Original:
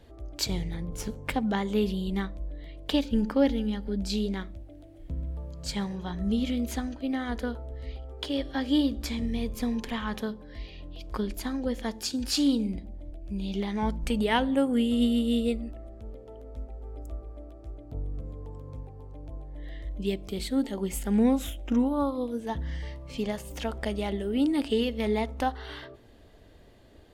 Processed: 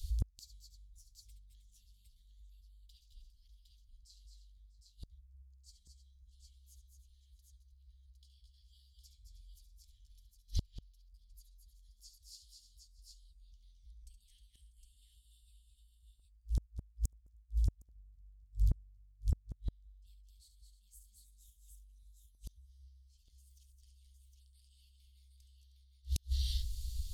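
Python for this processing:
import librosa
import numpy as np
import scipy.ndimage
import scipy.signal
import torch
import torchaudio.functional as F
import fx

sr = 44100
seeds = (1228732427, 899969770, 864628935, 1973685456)

p1 = scipy.signal.sosfilt(scipy.signal.cheby2(4, 80, [310.0, 1100.0], 'bandstop', fs=sr, output='sos'), x)
p2 = p1 + fx.echo_multitap(p1, sr, ms=(70, 212, 226, 312, 644, 760), db=(-10.0, -8.5, -7.0, -12.5, -20.0, -4.0), dry=0)
p3 = fx.gate_flip(p2, sr, shuts_db=-37.0, range_db=-40)
y = F.gain(torch.from_numpy(p3), 16.5).numpy()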